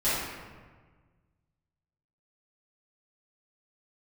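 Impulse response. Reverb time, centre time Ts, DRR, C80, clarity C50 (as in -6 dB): 1.5 s, 100 ms, -14.5 dB, 1.0 dB, -2.5 dB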